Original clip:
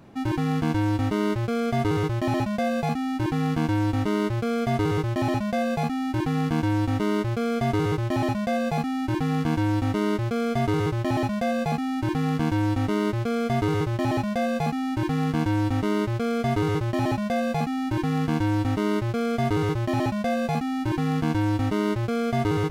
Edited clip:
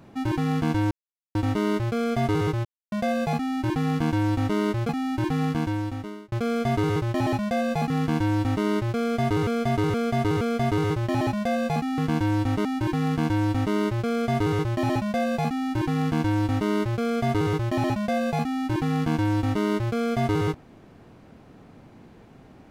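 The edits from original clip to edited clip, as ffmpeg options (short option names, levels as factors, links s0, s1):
-filter_complex "[0:a]asplit=12[s0][s1][s2][s3][s4][s5][s6][s7][s8][s9][s10][s11];[s0]atrim=end=0.91,asetpts=PTS-STARTPTS,afade=t=out:st=0.906:d=0.004:c=hsin,apad=pad_dur=0.44[s12];[s1]atrim=start=0.91:end=2.21,asetpts=PTS-STARTPTS,afade=t=in:d=0.004:c=hsin,afade=t=out:st=1.296:d=0.004:c=hsin[s13];[s2]atrim=start=2.21:end=2.48,asetpts=PTS-STARTPTS,volume=0[s14];[s3]atrim=start=2.48:end=4.452,asetpts=PTS-STARTPTS,afade=t=in:d=0.004:c=hsin[s15];[s4]atrim=start=5.848:end=7.28,asetpts=PTS-STARTPTS,afade=t=out:st=0.552:d=0.88[s16];[s5]atrim=start=7.28:end=8.862,asetpts=PTS-STARTPTS,afade=t=in:d=0.004:c=hsin[s17];[s6]atrim=start=9.268:end=10.842[s18];[s7]atrim=start=10.368:end=10.842[s19];[s8]atrim=start=10.368:end=10.842[s20];[s9]atrim=start=10.368:end=11.942[s21];[s10]atrim=start=12.288:end=12.962[s22];[s11]atrim=start=14.808[s23];[s12][s13][s14][s15]concat=n=4:v=0:a=1[s24];[s16][s17]concat=n=2:v=0:a=1[s25];[s24][s25]acrossfade=d=0.004:c1=hsin:c2=hsin[s26];[s26][s18]acrossfade=d=0.004:c1=hsin:c2=hsin[s27];[s27][s19]acrossfade=d=0.004:c1=hsin:c2=hsin[s28];[s28][s20]acrossfade=d=0.004:c1=hsin:c2=hsin[s29];[s29][s21]acrossfade=d=0.004:c1=hsin:c2=hsin[s30];[s30][s22]acrossfade=d=0.004:c1=hsin:c2=hsin[s31];[s31][s23]acrossfade=d=0.004:c1=hsin:c2=hsin"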